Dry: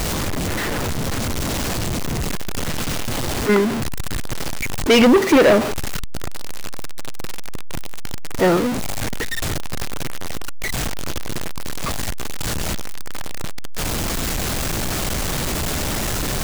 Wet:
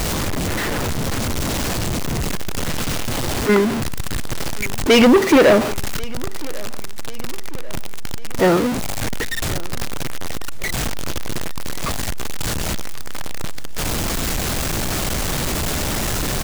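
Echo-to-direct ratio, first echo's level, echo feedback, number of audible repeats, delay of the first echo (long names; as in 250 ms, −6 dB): −20.0 dB, −21.5 dB, 51%, 3, 1,094 ms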